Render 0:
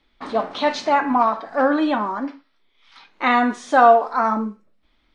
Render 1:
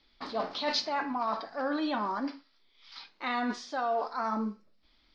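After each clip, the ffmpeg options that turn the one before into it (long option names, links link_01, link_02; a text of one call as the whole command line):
ffmpeg -i in.wav -af "areverse,acompressor=threshold=-24dB:ratio=6,areverse,lowpass=frequency=4900:width_type=q:width=5.3,volume=-5dB" out.wav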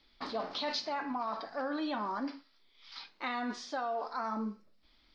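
ffmpeg -i in.wav -af "acompressor=threshold=-32dB:ratio=6" out.wav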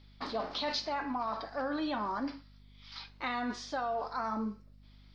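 ffmpeg -i in.wav -af "aeval=exprs='val(0)+0.00141*(sin(2*PI*50*n/s)+sin(2*PI*2*50*n/s)/2+sin(2*PI*3*50*n/s)/3+sin(2*PI*4*50*n/s)/4+sin(2*PI*5*50*n/s)/5)':channel_layout=same,volume=1dB" out.wav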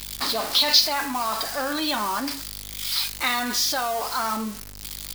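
ffmpeg -i in.wav -af "aeval=exprs='val(0)+0.5*0.00668*sgn(val(0))':channel_layout=same,crystalizer=i=8:c=0,volume=3.5dB" out.wav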